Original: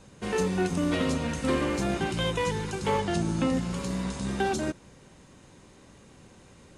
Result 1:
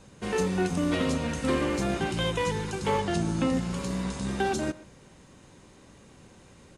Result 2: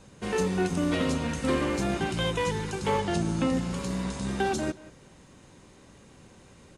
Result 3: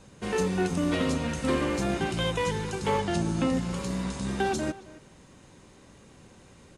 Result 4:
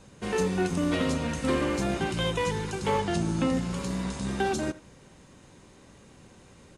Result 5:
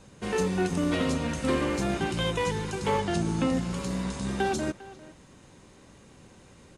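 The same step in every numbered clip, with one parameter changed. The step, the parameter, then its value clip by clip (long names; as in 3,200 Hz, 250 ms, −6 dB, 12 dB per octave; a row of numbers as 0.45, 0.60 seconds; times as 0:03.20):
far-end echo of a speakerphone, delay time: 120, 180, 270, 80, 400 milliseconds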